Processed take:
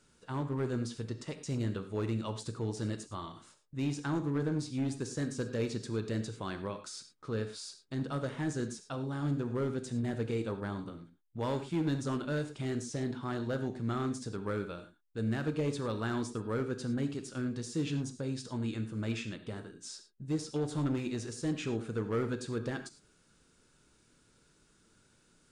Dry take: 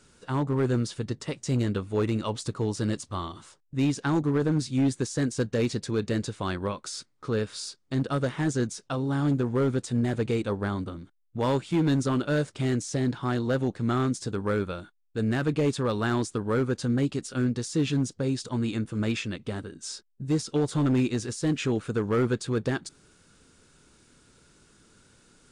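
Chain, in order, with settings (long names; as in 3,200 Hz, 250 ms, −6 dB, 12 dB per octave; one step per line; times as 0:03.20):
reverb whose tail is shaped and stops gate 130 ms flat, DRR 8 dB
level −8.5 dB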